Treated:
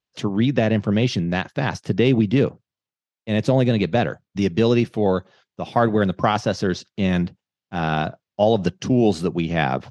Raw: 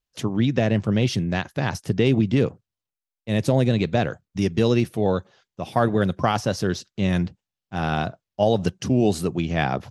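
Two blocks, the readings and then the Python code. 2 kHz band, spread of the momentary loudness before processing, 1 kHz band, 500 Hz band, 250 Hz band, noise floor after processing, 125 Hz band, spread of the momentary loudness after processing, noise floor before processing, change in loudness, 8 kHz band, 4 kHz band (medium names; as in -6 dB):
+2.5 dB, 7 LU, +2.5 dB, +2.5 dB, +2.0 dB, under -85 dBFS, +0.5 dB, 7 LU, under -85 dBFS, +2.0 dB, -2.5 dB, +1.5 dB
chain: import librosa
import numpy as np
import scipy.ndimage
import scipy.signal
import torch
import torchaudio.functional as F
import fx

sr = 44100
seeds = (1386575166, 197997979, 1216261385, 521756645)

y = fx.bandpass_edges(x, sr, low_hz=110.0, high_hz=5400.0)
y = y * 10.0 ** (2.5 / 20.0)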